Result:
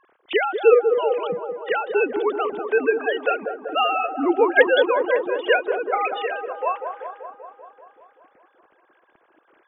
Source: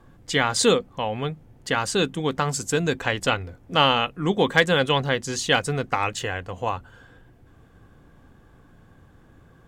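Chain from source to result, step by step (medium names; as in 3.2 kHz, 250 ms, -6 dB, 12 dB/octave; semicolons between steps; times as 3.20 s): formants replaced by sine waves; on a send: feedback echo behind a band-pass 193 ms, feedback 67%, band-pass 550 Hz, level -6 dB; on the sum: trim +1.5 dB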